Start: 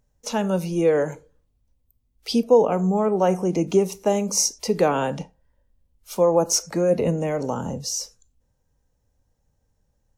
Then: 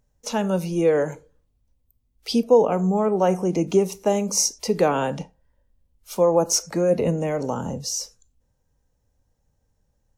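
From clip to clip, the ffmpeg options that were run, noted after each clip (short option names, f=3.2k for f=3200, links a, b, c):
-af anull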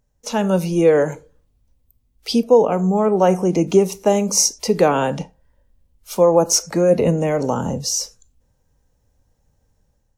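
-af "dynaudnorm=f=140:g=5:m=6dB"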